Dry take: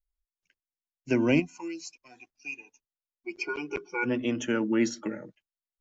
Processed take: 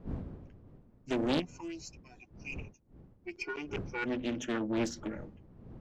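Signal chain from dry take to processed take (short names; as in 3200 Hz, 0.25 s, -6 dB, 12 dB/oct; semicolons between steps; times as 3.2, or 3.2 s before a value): one diode to ground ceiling -21 dBFS; wind noise 200 Hz -43 dBFS; Doppler distortion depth 0.65 ms; gain -4.5 dB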